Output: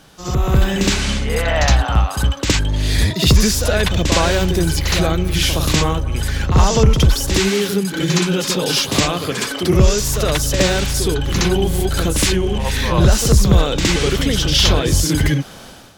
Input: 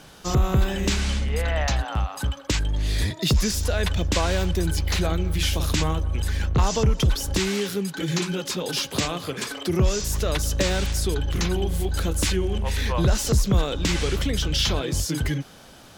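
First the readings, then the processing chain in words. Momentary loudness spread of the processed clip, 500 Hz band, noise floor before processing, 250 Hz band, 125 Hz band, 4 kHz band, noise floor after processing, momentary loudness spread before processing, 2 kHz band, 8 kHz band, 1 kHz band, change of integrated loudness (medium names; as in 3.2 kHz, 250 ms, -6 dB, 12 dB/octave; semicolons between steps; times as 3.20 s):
6 LU, +8.5 dB, -46 dBFS, +8.5 dB, +7.0 dB, +8.5 dB, -33 dBFS, 5 LU, +8.5 dB, +8.5 dB, +8.5 dB, +8.0 dB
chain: level rider gain up to 12 dB; on a send: reverse echo 66 ms -6 dB; on the sum: trim -1.5 dB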